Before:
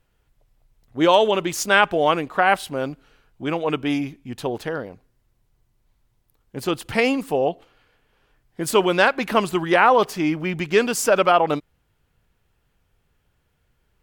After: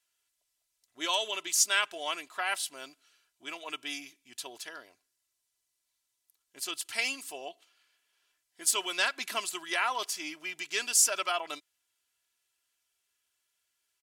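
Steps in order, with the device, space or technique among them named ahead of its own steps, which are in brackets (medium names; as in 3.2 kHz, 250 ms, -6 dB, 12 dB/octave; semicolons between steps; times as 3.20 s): 8.98–9.38 s: bass shelf 210 Hz +9.5 dB; piezo pickup straight into a mixer (low-pass 7.3 kHz 12 dB/octave; differentiator); treble shelf 6.7 kHz +10 dB; comb 3 ms, depth 55%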